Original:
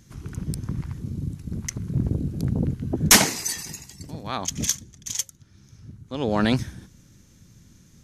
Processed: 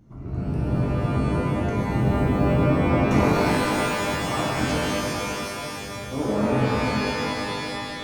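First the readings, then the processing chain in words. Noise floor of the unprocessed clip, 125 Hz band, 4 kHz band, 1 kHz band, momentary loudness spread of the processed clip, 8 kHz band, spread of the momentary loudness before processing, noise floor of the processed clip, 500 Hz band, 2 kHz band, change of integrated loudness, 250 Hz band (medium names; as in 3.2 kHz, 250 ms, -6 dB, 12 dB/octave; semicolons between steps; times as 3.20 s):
-54 dBFS, +4.5 dB, -3.5 dB, +7.5 dB, 10 LU, -13.0 dB, 20 LU, -34 dBFS, +8.5 dB, +2.0 dB, +0.5 dB, +5.0 dB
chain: Savitzky-Golay filter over 65 samples; hum notches 50/100/150/200 Hz; peak limiter -20.5 dBFS, peak gain reduction 10 dB; pitch-shifted reverb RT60 3 s, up +12 st, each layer -2 dB, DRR -6.5 dB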